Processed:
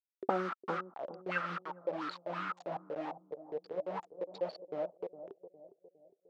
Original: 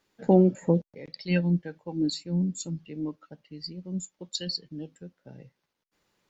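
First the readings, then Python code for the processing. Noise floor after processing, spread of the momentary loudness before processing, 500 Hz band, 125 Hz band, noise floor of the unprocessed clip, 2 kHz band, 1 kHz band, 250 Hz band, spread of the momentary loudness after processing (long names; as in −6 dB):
−83 dBFS, 20 LU, −7.5 dB, −22.5 dB, −82 dBFS, +1.5 dB, +2.0 dB, −18.5 dB, 13 LU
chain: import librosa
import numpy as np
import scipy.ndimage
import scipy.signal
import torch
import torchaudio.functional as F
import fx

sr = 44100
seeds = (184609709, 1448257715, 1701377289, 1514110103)

y = fx.wiener(x, sr, points=25)
y = fx.quant_dither(y, sr, seeds[0], bits=6, dither='none')
y = scipy.signal.sosfilt(scipy.signal.butter(2, 3700.0, 'lowpass', fs=sr, output='sos'), y)
y = fx.auto_wah(y, sr, base_hz=360.0, top_hz=1300.0, q=11.0, full_db=-24.0, direction='up')
y = fx.high_shelf(y, sr, hz=2100.0, db=9.5)
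y = fx.echo_bbd(y, sr, ms=408, stages=2048, feedback_pct=45, wet_db=-12)
y = F.gain(torch.from_numpy(y), 14.0).numpy()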